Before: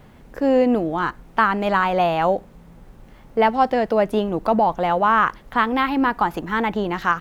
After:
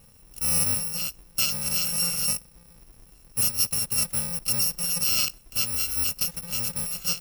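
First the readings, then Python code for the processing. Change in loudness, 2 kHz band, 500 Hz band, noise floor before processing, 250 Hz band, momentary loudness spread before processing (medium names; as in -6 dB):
-3.5 dB, -13.0 dB, -25.5 dB, -47 dBFS, -18.5 dB, 6 LU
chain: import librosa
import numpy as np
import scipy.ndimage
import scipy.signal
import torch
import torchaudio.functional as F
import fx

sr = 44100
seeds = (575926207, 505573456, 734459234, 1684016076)

y = fx.bit_reversed(x, sr, seeds[0], block=128)
y = y * librosa.db_to_amplitude(-7.0)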